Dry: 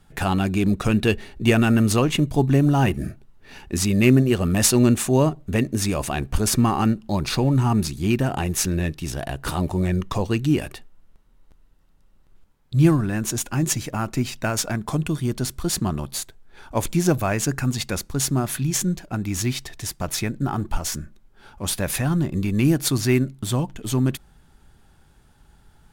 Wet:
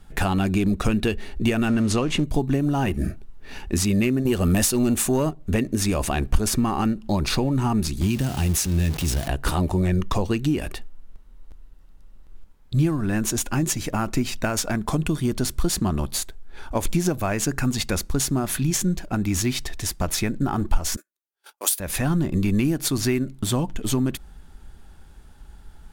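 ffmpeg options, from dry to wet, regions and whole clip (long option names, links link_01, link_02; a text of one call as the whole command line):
ffmpeg -i in.wav -filter_complex "[0:a]asettb=1/sr,asplit=3[link_01][link_02][link_03];[link_01]atrim=end=1.684[link_04];[link_02]atrim=start=1.68:end=2.24,asetpts=PTS-STARTPTS,afade=type=in:duration=0.004:curve=qsin,afade=type=out:start_time=0.556:duration=0.004:curve=qsin,aeval=exprs='val(0)+0.5*0.0237*sgn(val(0))':channel_layout=same,lowpass=8200[link_05];[link_03]atrim=start=2.236[link_06];[link_04][link_05]acrossfade=duration=0.004:curve1=hsin:curve2=qsin[link_07];[link_07][link_06]acrossfade=duration=0.004:curve1=qsin:curve2=hsin,asettb=1/sr,asplit=3[link_08][link_09][link_10];[link_08]atrim=end=4.254[link_11];[link_09]atrim=start=4.25:end=5.31,asetpts=PTS-STARTPTS,afade=type=in:duration=0.004:curve=qsin,afade=type=out:start_time=1.056:duration=0.004:curve=qsin,highshelf=frequency=8100:gain=8,acontrast=76[link_12];[link_10]atrim=start=5.306[link_13];[link_11][link_12]acrossfade=duration=0.004:curve1=hsin:curve2=qsin[link_14];[link_14][link_13]acrossfade=duration=0.004:curve1=qsin:curve2=hsin,asettb=1/sr,asplit=3[link_15][link_16][link_17];[link_15]atrim=end=8.014[link_18];[link_16]atrim=start=8.01:end=9.28,asetpts=PTS-STARTPTS,afade=type=in:duration=0.004:curve=qsin,afade=type=out:start_time=1.266:duration=0.004:curve=qsin,aeval=exprs='val(0)+0.5*0.0422*sgn(val(0))':channel_layout=same,highpass=51,acrossover=split=210|3000[link_19][link_20][link_21];[link_20]acompressor=threshold=-35dB:ratio=4:attack=3.2:release=140:knee=2.83:detection=peak[link_22];[link_19][link_22][link_21]amix=inputs=3:normalize=0[link_23];[link_17]atrim=start=9.276[link_24];[link_18][link_23]acrossfade=duration=0.004:curve1=hsin:curve2=qsin[link_25];[link_25][link_24]acrossfade=duration=0.004:curve1=qsin:curve2=hsin,asettb=1/sr,asplit=3[link_26][link_27][link_28];[link_26]atrim=end=20.964[link_29];[link_27]atrim=start=20.96:end=21.8,asetpts=PTS-STARTPTS,afade=type=in:duration=0.004:curve=qsin,afade=type=out:start_time=0.836:duration=0.004:curve=qsin,highpass=frequency=330:width=0.5412,highpass=frequency=330:width=1.3066,aemphasis=mode=production:type=riaa,agate=range=-35dB:threshold=-45dB:ratio=16:release=100:detection=peak[link_30];[link_28]atrim=start=21.796[link_31];[link_29][link_30]acrossfade=duration=0.004:curve1=hsin:curve2=qsin[link_32];[link_32][link_31]acrossfade=duration=0.004:curve1=qsin:curve2=hsin,equalizer=frequency=120:width=1.6:gain=-9.5,acompressor=threshold=-24dB:ratio=6,lowshelf=frequency=160:gain=9,volume=3dB" out.wav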